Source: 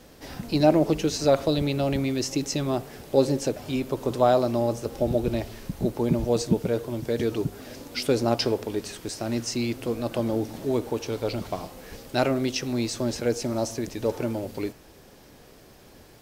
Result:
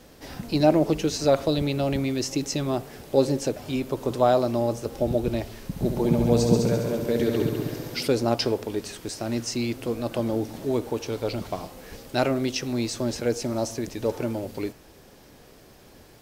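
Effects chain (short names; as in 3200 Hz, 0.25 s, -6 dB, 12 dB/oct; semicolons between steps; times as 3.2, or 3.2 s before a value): 5.64–8.08 multi-head echo 68 ms, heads all three, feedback 53%, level -8 dB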